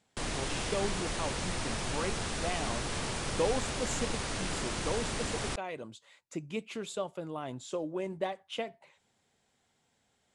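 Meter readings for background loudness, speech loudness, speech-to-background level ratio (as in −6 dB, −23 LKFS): −35.0 LKFS, −38.5 LKFS, −3.5 dB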